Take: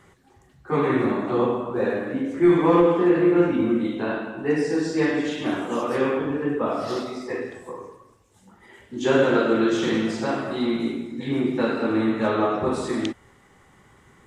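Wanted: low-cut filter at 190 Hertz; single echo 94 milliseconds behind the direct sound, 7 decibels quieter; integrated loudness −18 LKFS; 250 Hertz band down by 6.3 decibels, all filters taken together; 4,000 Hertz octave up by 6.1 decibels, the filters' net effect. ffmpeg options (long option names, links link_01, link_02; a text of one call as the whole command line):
ffmpeg -i in.wav -af "highpass=190,equalizer=frequency=250:width_type=o:gain=-8.5,equalizer=frequency=4000:width_type=o:gain=7.5,aecho=1:1:94:0.447,volume=7dB" out.wav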